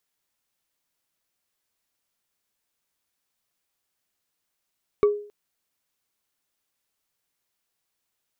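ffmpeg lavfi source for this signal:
-f lavfi -i "aevalsrc='0.251*pow(10,-3*t/0.46)*sin(2*PI*414*t)+0.0708*pow(10,-3*t/0.136)*sin(2*PI*1141.4*t)+0.02*pow(10,-3*t/0.061)*sin(2*PI*2237.3*t)+0.00562*pow(10,-3*t/0.033)*sin(2*PI*3698.3*t)+0.00158*pow(10,-3*t/0.021)*sin(2*PI*5522.8*t)':d=0.27:s=44100"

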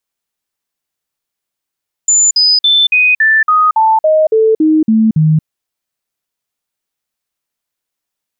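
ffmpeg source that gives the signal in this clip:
-f lavfi -i "aevalsrc='0.501*clip(min(mod(t,0.28),0.23-mod(t,0.28))/0.005,0,1)*sin(2*PI*7060*pow(2,-floor(t/0.28)/2)*mod(t,0.28))':d=3.36:s=44100"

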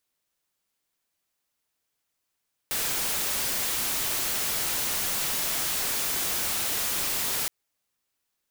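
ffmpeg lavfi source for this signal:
-f lavfi -i "anoisesrc=c=white:a=0.0689:d=4.77:r=44100:seed=1"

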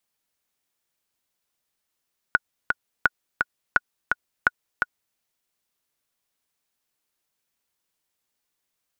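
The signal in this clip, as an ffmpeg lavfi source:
-f lavfi -i "aevalsrc='pow(10,(-3.5-4*gte(mod(t,2*60/170),60/170))/20)*sin(2*PI*1460*mod(t,60/170))*exp(-6.91*mod(t,60/170)/0.03)':d=2.82:s=44100"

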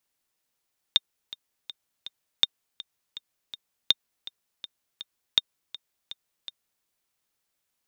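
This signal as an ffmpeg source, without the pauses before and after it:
-f lavfi -i "aevalsrc='pow(10,(-5-18.5*gte(mod(t,4*60/163),60/163))/20)*sin(2*PI*3650*mod(t,60/163))*exp(-6.91*mod(t,60/163)/0.03)':d=5.88:s=44100"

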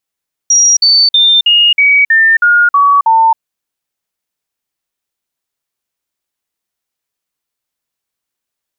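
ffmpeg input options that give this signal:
-f lavfi -i "aevalsrc='0.596*clip(min(mod(t,0.32),0.27-mod(t,0.32))/0.005,0,1)*sin(2*PI*5710*pow(2,-floor(t/0.32)/3)*mod(t,0.32))':d=2.88:s=44100"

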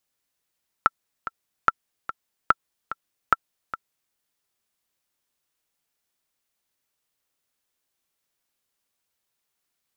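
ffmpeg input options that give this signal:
-f lavfi -i "aevalsrc='pow(10,(-2.5-13.5*gte(mod(t,2*60/146),60/146))/20)*sin(2*PI*1340*mod(t,60/146))*exp(-6.91*mod(t,60/146)/0.03)':d=3.28:s=44100"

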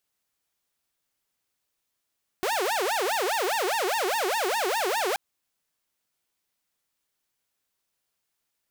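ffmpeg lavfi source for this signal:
-f lavfi -i "aevalsrc='0.0841*(2*mod((644*t-285/(2*PI*4.9)*sin(2*PI*4.9*t)),1)-1)':d=2.73:s=44100"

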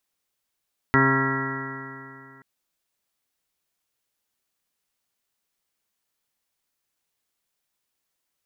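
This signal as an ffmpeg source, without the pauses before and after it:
-f lavfi -i "aevalsrc='0.0794*pow(10,-3*t/2.63)*sin(2*PI*134.02*t)+0.0944*pow(10,-3*t/2.63)*sin(2*PI*268.17*t)+0.0631*pow(10,-3*t/2.63)*sin(2*PI*402.58*t)+0.0112*pow(10,-3*t/2.63)*sin(2*PI*537.37*t)+0.0178*pow(10,-3*t/2.63)*sin(2*PI*672.67*t)+0.015*pow(10,-3*t/2.63)*sin(2*PI*808.62*t)+0.0501*pow(10,-3*t/2.63)*sin(2*PI*945.33*t)+0.0398*pow(10,-3*t/2.63)*sin(2*PI*1082.92*t)+0.0141*pow(10,-3*t/2.63)*sin(2*PI*1221.53*t)+0.0944*pow(10,-3*t/2.63)*sin(2*PI*1361.27*t)+0.0126*pow(10,-3*t/2.63)*sin(2*PI*1502.27*t)+0.0531*pow(10,-3*t/2.63)*sin(2*PI*1644.63*t)+0.015*pow(10,-3*t/2.63)*sin(2*PI*1788.48*t)+0.0944*pow(10,-3*t/2.63)*sin(2*PI*1933.94*t)':d=1.48:s=44100"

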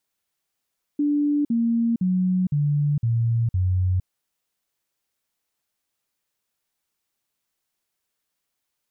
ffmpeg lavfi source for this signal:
-f lavfi -i "aevalsrc='0.126*clip(min(mod(t,0.51),0.46-mod(t,0.51))/0.005,0,1)*sin(2*PI*292*pow(2,-floor(t/0.51)/3)*mod(t,0.51))':d=3.06:s=44100"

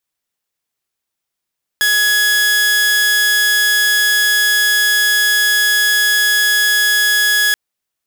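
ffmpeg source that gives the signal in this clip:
-f lavfi -i "aevalsrc='0.376*(2*mod(1680*t,1)-1)':d=5.73:s=44100"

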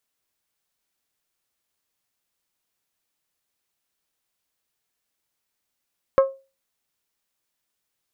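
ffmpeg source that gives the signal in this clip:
-f lavfi -i "aevalsrc='0.355*pow(10,-3*t/0.3)*sin(2*PI*539*t)+0.141*pow(10,-3*t/0.185)*sin(2*PI*1078*t)+0.0562*pow(10,-3*t/0.163)*sin(2*PI*1293.6*t)+0.0224*pow(10,-3*t/0.139)*sin(2*PI*1617*t)+0.00891*pow(10,-3*t/0.114)*sin(2*PI*2156*t)':d=0.89:s=44100"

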